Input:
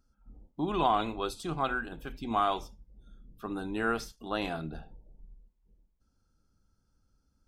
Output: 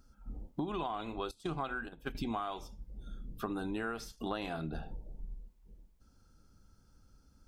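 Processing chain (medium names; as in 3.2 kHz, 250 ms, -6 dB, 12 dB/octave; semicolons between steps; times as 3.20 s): 1.31–2.15 s: gate -38 dBFS, range -17 dB; compression 16:1, threshold -42 dBFS, peak gain reduction 21.5 dB; trim +8.5 dB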